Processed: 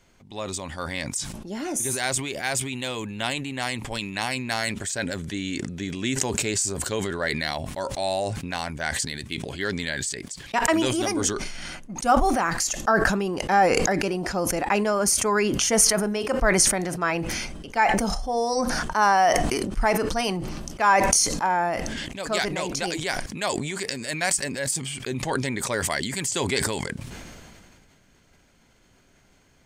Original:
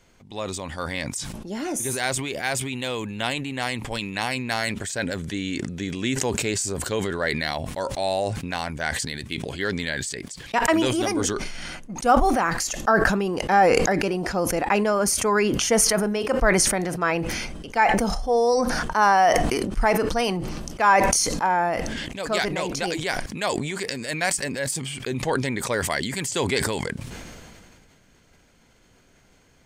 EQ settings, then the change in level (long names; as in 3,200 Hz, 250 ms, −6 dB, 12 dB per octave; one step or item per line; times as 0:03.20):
notch filter 480 Hz, Q 14
dynamic equaliser 7,400 Hz, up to +4 dB, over −42 dBFS, Q 0.89
−1.5 dB